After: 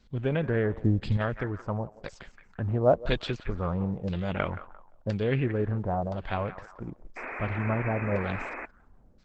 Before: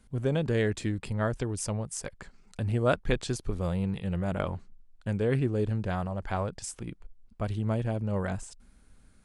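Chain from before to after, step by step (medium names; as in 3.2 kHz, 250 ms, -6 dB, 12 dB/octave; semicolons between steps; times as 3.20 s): 0.73–1.17 s: tone controls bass +8 dB, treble -1 dB; on a send: thinning echo 173 ms, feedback 54%, high-pass 1.1 kHz, level -10.5 dB; on the sum: LFO low-pass saw down 0.98 Hz 540–4800 Hz; 3.48–5.20 s: dynamic bell 5.2 kHz, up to +6 dB, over -55 dBFS, Q 0.73; 7.16–8.66 s: painted sound noise 230–2600 Hz -37 dBFS; Opus 12 kbps 48 kHz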